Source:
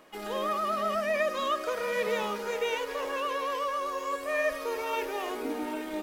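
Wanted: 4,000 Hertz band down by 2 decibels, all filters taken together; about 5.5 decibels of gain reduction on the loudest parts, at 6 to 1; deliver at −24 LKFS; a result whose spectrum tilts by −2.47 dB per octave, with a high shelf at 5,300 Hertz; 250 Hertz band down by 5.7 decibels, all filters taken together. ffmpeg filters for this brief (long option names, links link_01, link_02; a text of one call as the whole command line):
ffmpeg -i in.wav -af "equalizer=frequency=250:width_type=o:gain=-7.5,equalizer=frequency=4000:width_type=o:gain=-6,highshelf=frequency=5300:gain=8,acompressor=threshold=-31dB:ratio=6,volume=11dB" out.wav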